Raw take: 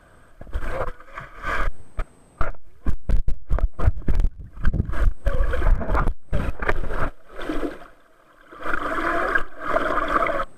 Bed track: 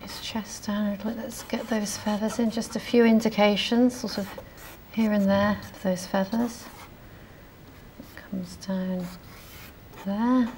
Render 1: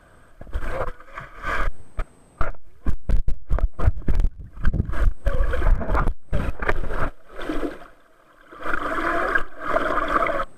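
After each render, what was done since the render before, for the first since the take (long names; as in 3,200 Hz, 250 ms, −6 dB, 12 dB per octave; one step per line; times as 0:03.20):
no processing that can be heard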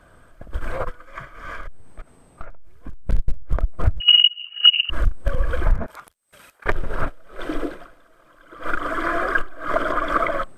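0:01.34–0:03.07: downward compressor 2.5 to 1, threshold −33 dBFS
0:04.00–0:04.90: voice inversion scrambler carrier 2,900 Hz
0:05.86–0:06.66: first difference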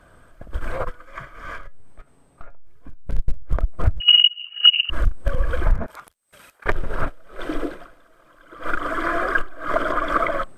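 0:01.58–0:03.16: tuned comb filter 140 Hz, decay 0.19 s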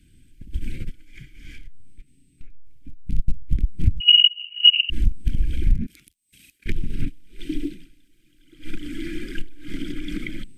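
elliptic band-stop filter 300–2,400 Hz, stop band 70 dB
dynamic equaliser 190 Hz, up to +7 dB, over −46 dBFS, Q 1.4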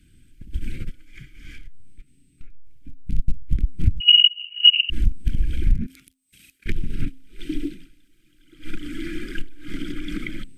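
parametric band 1,300 Hz +6.5 dB 0.56 octaves
hum removal 263.7 Hz, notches 4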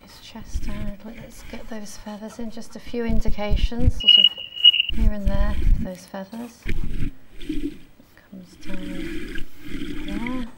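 mix in bed track −8 dB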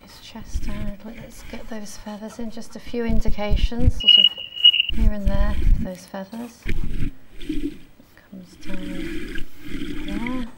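level +1 dB
brickwall limiter −3 dBFS, peak gain reduction 2 dB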